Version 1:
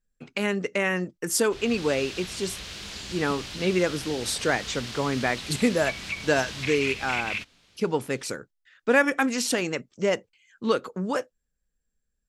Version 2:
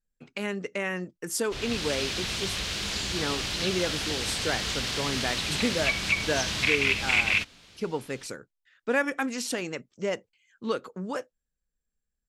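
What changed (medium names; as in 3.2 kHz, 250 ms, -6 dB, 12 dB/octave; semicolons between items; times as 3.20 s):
speech -5.5 dB; background +7.0 dB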